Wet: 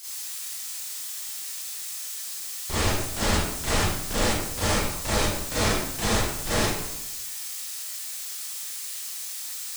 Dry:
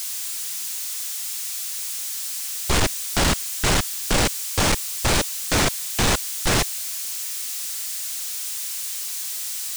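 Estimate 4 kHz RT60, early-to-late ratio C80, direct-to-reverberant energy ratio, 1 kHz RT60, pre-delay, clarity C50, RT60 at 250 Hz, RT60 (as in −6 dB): 0.60 s, 2.5 dB, −11.0 dB, 0.90 s, 29 ms, −2.5 dB, 0.95 s, 0.90 s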